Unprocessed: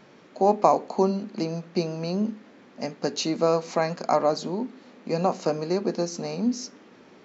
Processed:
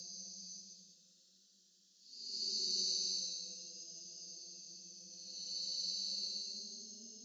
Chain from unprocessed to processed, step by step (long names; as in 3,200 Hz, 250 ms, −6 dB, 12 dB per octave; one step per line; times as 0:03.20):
inverse Chebyshev high-pass filter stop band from 2,400 Hz, stop band 40 dB
extreme stretch with random phases 11×, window 0.10 s, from 0:01.54
frequency shifter +21 Hz
level +5 dB